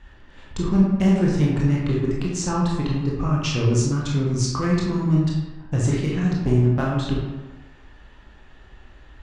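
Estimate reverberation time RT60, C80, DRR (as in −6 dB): 1.2 s, 3.5 dB, −4.0 dB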